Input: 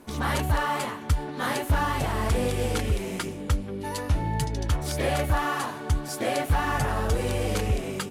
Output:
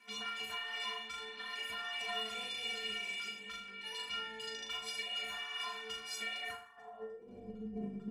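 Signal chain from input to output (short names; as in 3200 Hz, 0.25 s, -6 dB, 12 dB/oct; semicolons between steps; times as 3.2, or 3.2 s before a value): band-pass sweep 2600 Hz -> 200 Hz, 6.35–7.5; negative-ratio compressor -41 dBFS, ratio -0.5; flutter echo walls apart 6.8 m, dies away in 0.43 s; limiter -31 dBFS, peak gain reduction 8.5 dB; dynamic EQ 1800 Hz, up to -4 dB, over -52 dBFS, Q 2.1; metallic resonator 210 Hz, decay 0.58 s, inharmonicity 0.03; gain +18 dB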